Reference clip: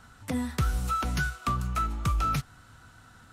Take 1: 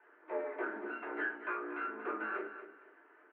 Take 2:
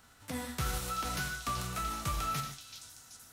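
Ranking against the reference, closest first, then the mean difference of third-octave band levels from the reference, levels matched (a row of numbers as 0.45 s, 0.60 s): 2, 1; 7.5 dB, 15.5 dB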